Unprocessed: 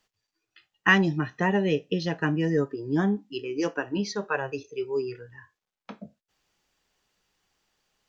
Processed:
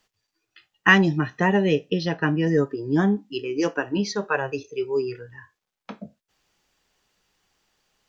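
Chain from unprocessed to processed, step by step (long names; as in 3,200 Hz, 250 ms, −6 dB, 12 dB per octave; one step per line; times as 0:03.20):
0:01.90–0:02.47: Chebyshev low-pass filter 6,000 Hz, order 8
level +4 dB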